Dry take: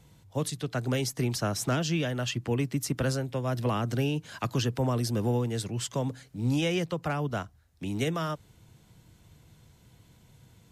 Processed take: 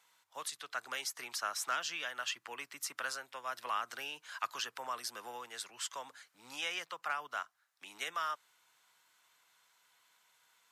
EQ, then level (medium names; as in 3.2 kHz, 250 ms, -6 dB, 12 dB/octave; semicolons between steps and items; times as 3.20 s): resonant high-pass 1.2 kHz, resonance Q 1.8; -5.0 dB